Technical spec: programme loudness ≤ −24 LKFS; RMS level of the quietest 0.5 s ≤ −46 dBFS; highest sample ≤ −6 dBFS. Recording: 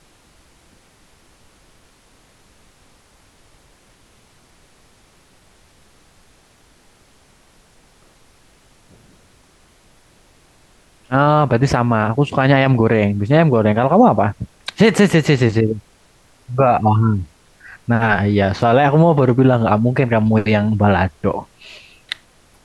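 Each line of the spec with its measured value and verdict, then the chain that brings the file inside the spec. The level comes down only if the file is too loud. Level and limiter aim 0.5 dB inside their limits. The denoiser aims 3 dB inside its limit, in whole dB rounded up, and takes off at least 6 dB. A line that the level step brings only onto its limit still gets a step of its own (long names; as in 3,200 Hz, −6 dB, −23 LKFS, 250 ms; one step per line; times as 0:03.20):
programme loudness −15.0 LKFS: out of spec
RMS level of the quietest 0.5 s −52 dBFS: in spec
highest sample −2.5 dBFS: out of spec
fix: level −9.5 dB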